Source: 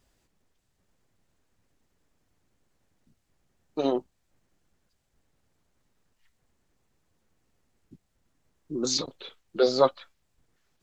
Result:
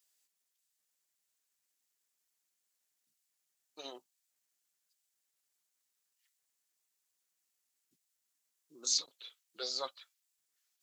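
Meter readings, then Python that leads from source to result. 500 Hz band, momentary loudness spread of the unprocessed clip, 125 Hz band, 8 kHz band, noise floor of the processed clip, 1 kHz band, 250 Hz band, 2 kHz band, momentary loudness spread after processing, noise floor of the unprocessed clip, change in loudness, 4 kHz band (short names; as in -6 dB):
-23.0 dB, 17 LU, under -30 dB, -1.0 dB, -84 dBFS, -17.0 dB, -27.5 dB, -12.5 dB, 18 LU, -75 dBFS, -8.5 dB, -4.0 dB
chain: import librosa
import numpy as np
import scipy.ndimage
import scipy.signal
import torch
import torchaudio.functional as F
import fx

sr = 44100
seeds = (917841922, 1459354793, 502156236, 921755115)

y = np.diff(x, prepend=0.0)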